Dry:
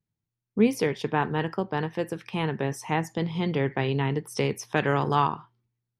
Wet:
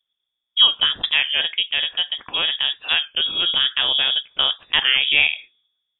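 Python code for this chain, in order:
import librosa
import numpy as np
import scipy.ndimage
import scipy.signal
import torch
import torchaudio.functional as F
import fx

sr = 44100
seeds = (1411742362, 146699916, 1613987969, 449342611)

y = fx.freq_invert(x, sr, carrier_hz=3500)
y = fx.record_warp(y, sr, rpm=33.33, depth_cents=100.0)
y = F.gain(torch.from_numpy(y), 6.0).numpy()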